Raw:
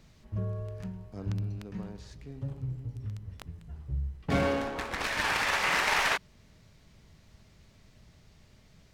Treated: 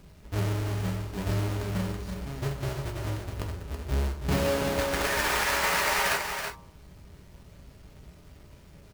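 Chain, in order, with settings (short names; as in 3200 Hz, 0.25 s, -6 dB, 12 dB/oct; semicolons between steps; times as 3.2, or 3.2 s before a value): half-waves squared off; de-hum 116.6 Hz, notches 11; compressor 4:1, threshold -27 dBFS, peak gain reduction 7.5 dB; echo 0.328 s -6.5 dB; non-linear reverb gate 80 ms falling, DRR 3 dB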